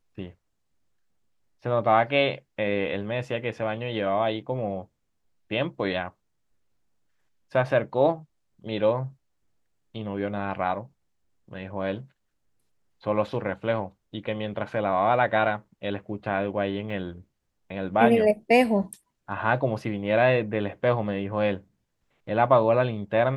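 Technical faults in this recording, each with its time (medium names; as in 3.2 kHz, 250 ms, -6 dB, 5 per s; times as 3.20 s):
16.90 s: dropout 2.2 ms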